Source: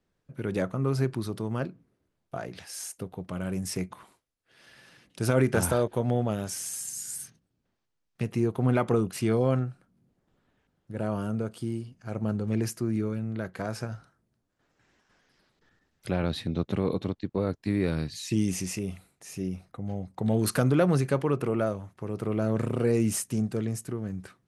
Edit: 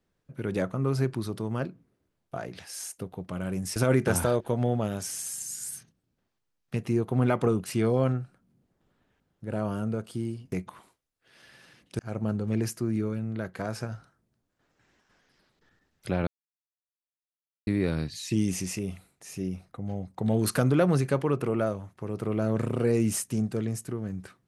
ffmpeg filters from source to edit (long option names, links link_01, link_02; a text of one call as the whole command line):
ffmpeg -i in.wav -filter_complex "[0:a]asplit=6[link_01][link_02][link_03][link_04][link_05][link_06];[link_01]atrim=end=3.762[link_07];[link_02]atrim=start=5.228:end=11.992[link_08];[link_03]atrim=start=3.758:end=5.232[link_09];[link_04]atrim=start=11.988:end=16.27,asetpts=PTS-STARTPTS,afade=type=out:start_time=4.278:duration=0.004:curve=hsin[link_10];[link_05]atrim=start=16.27:end=17.67,asetpts=PTS-STARTPTS,volume=0[link_11];[link_06]atrim=start=17.67,asetpts=PTS-STARTPTS,afade=type=in:duration=0.004:curve=hsin[link_12];[link_07][link_08]acrossfade=duration=0.004:curve1=hsin:curve2=hsin[link_13];[link_13][link_09]acrossfade=duration=0.004:curve1=hsin:curve2=hsin[link_14];[link_10][link_11][link_12]concat=n=3:v=0:a=1[link_15];[link_14][link_15]acrossfade=duration=0.004:curve1=hsin:curve2=hsin" out.wav